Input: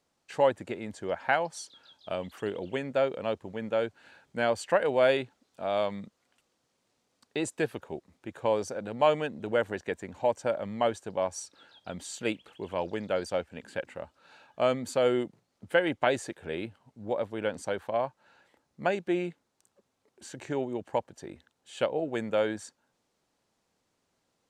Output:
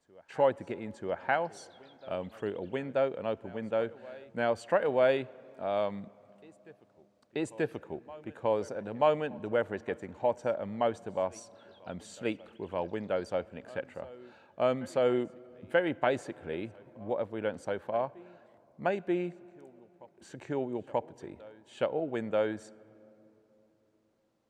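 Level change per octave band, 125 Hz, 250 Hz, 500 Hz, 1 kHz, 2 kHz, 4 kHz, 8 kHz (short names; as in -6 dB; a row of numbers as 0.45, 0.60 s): -1.5, -1.5, -1.5, -2.0, -4.0, -6.5, -10.0 dB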